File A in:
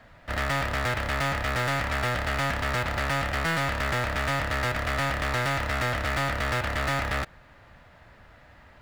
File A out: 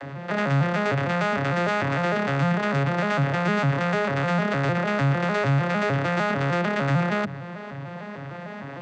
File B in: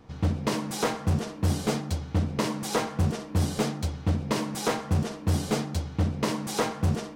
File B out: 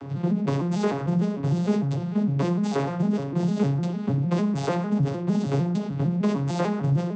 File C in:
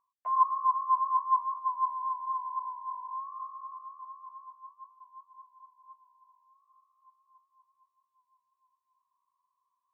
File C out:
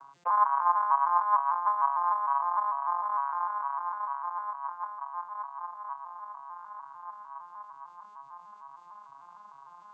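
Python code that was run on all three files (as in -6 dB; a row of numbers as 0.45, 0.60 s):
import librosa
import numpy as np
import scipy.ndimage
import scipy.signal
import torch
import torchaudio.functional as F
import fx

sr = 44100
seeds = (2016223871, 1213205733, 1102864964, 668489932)

y = fx.vocoder_arp(x, sr, chord='major triad', root=49, every_ms=151)
y = fx.hum_notches(y, sr, base_hz=60, count=3)
y = fx.env_flatten(y, sr, amount_pct=50)
y = y * 10.0 ** (-12 / 20.0) / np.max(np.abs(y))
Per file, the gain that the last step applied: +3.0, +3.0, +0.5 dB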